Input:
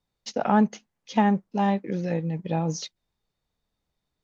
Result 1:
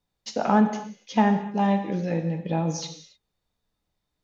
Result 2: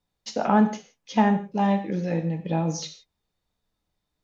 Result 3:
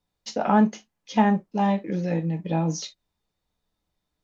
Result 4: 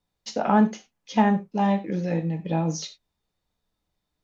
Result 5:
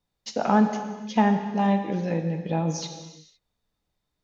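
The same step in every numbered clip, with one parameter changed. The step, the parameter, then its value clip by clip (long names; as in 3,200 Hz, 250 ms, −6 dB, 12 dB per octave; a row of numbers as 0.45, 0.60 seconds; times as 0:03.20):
reverb whose tail is shaped and stops, gate: 320, 190, 80, 120, 530 milliseconds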